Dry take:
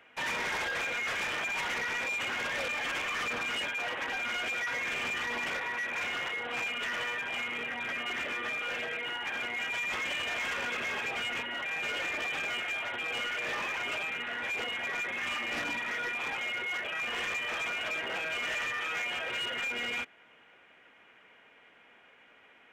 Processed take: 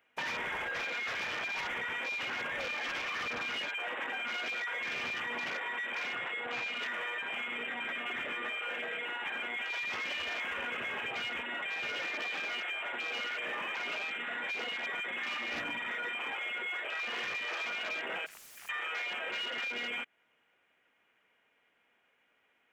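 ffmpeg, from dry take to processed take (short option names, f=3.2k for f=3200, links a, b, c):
-filter_complex "[0:a]asettb=1/sr,asplit=3[a][b][c];[a]atrim=end=6.154[d];[b]atrim=start=6.15:end=6.75,asetpts=PTS-STARTPTS,afade=t=in:d=0.004:c=qsin,afade=t=out:st=0.596:d=0.004:c=qsin,lowpass=f=5.4k:w=0.5412,lowpass=f=5.4k:w=1.3066[e];[c]atrim=start=6.746[f];[d][e]acrossfade=d=0.004:c1=hsin:c2=qsin[g];[g][f]acrossfade=d=0.004:c1=qsin:c2=hsin,asplit=3[h][i][j];[h]afade=t=out:st=18.25:d=0.02[k];[i]aeval=exprs='0.0112*(abs(mod(val(0)/0.0112+3,4)-2)-1)':c=same,afade=t=in:st=18.25:d=0.02,afade=t=out:st=18.68:d=0.02[l];[j]afade=t=in:st=18.68:d=0.02[m];[k][l][m]amix=inputs=3:normalize=0,afwtdn=0.0112,highshelf=f=8.3k:g=11.5,acompressor=threshold=-37dB:ratio=6,volume=2.5dB"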